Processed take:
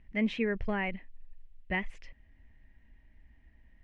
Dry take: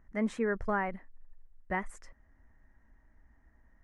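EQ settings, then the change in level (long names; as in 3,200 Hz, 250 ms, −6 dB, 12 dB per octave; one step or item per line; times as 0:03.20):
high-frequency loss of the air 290 metres
bass and treble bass +4 dB, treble −1 dB
high shelf with overshoot 1,900 Hz +12.5 dB, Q 3
0.0 dB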